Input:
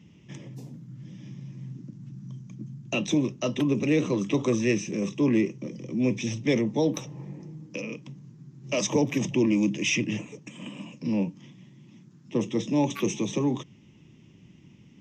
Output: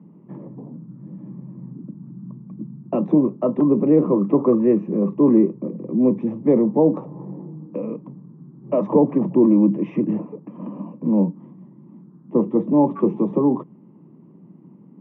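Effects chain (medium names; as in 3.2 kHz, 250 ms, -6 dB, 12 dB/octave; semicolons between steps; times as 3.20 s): Chebyshev band-pass 170–1100 Hz, order 3; trim +9 dB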